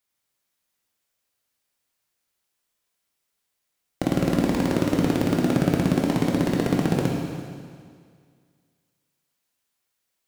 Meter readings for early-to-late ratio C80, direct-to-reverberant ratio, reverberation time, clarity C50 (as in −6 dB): 2.5 dB, −1.5 dB, 2.0 s, 1.0 dB